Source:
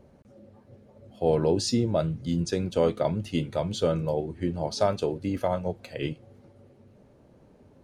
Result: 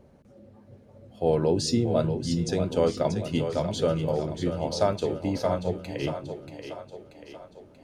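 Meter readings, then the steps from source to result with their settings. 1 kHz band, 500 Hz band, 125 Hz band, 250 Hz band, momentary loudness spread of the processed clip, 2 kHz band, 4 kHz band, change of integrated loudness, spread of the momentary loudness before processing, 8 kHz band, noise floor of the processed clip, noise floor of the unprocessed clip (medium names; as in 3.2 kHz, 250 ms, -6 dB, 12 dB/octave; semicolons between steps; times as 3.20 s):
+0.5 dB, +1.0 dB, +1.0 dB, +1.0 dB, 17 LU, +1.0 dB, +1.0 dB, +0.5 dB, 9 LU, +1.0 dB, -55 dBFS, -57 dBFS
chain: two-band feedback delay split 310 Hz, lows 208 ms, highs 634 ms, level -8 dB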